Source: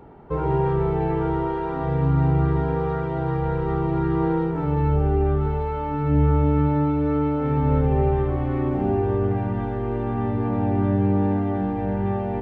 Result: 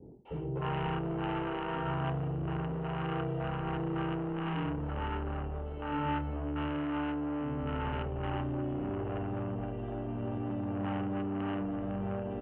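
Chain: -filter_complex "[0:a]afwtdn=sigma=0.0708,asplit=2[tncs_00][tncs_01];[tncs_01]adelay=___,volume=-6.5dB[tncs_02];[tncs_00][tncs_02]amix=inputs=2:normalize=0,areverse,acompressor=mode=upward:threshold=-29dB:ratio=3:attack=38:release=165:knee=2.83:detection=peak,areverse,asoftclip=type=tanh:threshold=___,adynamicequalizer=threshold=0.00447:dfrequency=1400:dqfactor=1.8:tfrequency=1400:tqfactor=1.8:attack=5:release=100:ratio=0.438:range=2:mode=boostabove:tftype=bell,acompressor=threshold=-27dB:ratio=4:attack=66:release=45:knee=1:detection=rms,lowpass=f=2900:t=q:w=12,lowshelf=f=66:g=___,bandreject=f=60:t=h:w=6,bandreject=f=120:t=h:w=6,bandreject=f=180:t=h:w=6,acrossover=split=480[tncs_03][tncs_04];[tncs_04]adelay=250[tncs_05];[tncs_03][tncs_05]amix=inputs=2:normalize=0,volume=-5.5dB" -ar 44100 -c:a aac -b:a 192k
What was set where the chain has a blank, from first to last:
24, -20.5dB, -10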